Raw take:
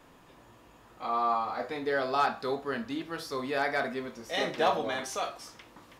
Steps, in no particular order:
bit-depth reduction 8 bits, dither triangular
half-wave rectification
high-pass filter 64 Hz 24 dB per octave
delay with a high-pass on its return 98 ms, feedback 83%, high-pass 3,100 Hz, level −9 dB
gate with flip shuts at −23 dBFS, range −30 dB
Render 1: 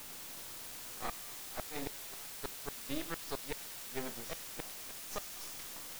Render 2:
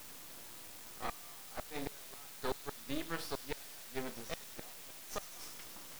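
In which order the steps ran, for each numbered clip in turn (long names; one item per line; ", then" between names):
high-pass filter, then gate with flip, then half-wave rectification, then bit-depth reduction, then delay with a high-pass on its return
gate with flip, then delay with a high-pass on its return, then bit-depth reduction, then high-pass filter, then half-wave rectification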